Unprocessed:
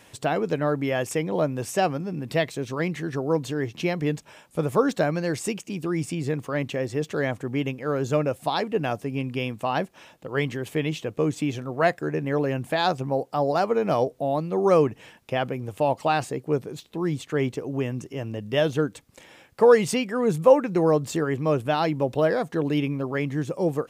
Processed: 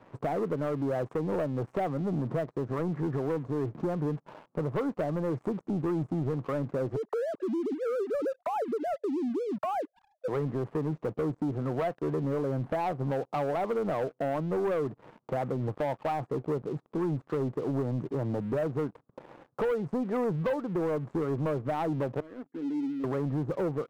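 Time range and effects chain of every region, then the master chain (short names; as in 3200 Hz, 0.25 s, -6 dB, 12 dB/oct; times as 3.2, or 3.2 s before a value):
6.96–10.28 sine-wave speech + compressor, threshold -32 dBFS
22.2–23.04 vowel filter i + tilt +4 dB/oct
whole clip: elliptic band-pass 120–1200 Hz, stop band 40 dB; compressor 5:1, threshold -31 dBFS; sample leveller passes 3; gain -4.5 dB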